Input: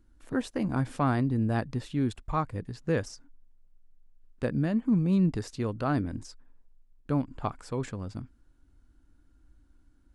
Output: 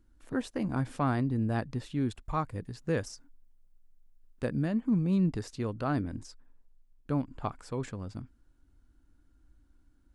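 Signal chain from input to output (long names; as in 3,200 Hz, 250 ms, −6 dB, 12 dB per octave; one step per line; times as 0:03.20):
0:02.25–0:04.68: high-shelf EQ 8,800 Hz +8 dB
level −2.5 dB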